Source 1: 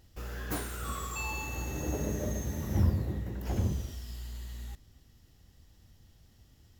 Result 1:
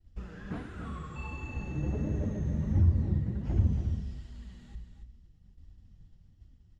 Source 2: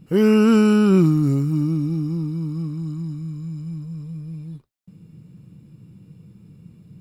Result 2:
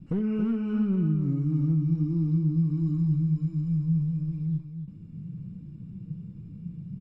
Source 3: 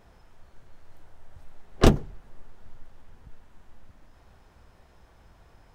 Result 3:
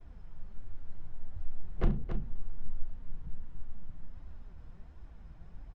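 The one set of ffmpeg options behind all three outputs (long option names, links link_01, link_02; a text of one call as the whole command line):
ffmpeg -i in.wav -filter_complex "[0:a]flanger=delay=2.6:depth=4.1:regen=31:speed=1.4:shape=triangular,acrossover=split=3400[link_01][link_02];[link_02]acompressor=threshold=-57dB:ratio=4:attack=1:release=60[link_03];[link_01][link_03]amix=inputs=2:normalize=0,bandreject=frequency=60:width_type=h:width=6,bandreject=frequency=120:width_type=h:width=6,acompressor=threshold=-30dB:ratio=10,agate=range=-33dB:threshold=-58dB:ratio=3:detection=peak,lowpass=frequency=8600:width=0.5412,lowpass=frequency=8600:width=1.3066,asoftclip=type=hard:threshold=-27dB,bass=frequency=250:gain=15,treble=frequency=4000:gain=-6,asplit=2[link_04][link_05];[link_05]aecho=0:1:70|277:0.188|0.398[link_06];[link_04][link_06]amix=inputs=2:normalize=0,volume=-3dB" out.wav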